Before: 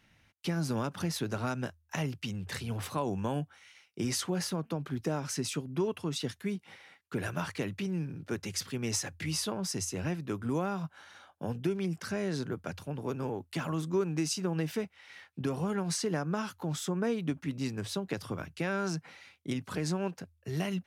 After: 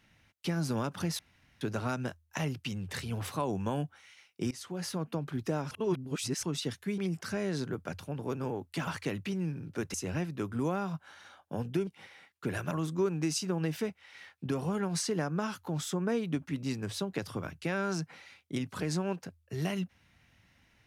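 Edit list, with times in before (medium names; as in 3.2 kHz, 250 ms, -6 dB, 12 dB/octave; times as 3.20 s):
1.19 s: insert room tone 0.42 s
4.09–4.62 s: fade in, from -20.5 dB
5.29–6.01 s: reverse
6.56–7.40 s: swap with 11.77–13.66 s
8.47–9.84 s: delete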